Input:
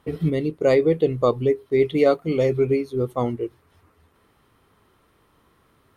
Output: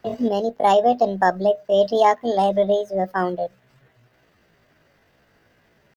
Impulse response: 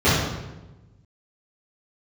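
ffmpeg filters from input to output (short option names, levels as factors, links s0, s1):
-filter_complex "[0:a]highshelf=f=3500:g=-4.5,acrossover=split=120|460|1800[s0][s1][s2][s3];[s0]alimiter=level_in=3.98:limit=0.0631:level=0:latency=1:release=290,volume=0.251[s4];[s4][s1][s2][s3]amix=inputs=4:normalize=0,asetrate=66075,aresample=44100,atempo=0.66742,volume=1.19"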